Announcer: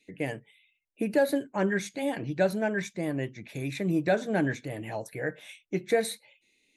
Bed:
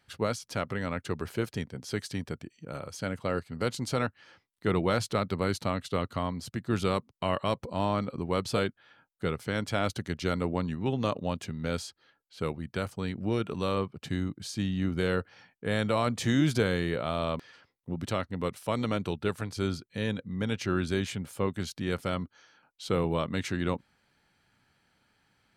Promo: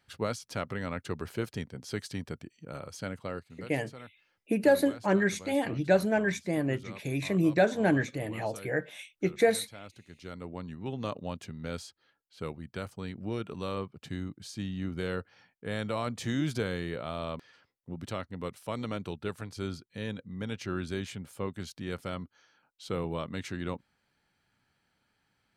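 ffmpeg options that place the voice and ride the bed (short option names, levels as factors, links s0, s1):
-filter_complex "[0:a]adelay=3500,volume=1.19[s0];[1:a]volume=3.35,afade=t=out:st=2.95:d=0.76:silence=0.158489,afade=t=in:st=10.08:d=1.03:silence=0.223872[s1];[s0][s1]amix=inputs=2:normalize=0"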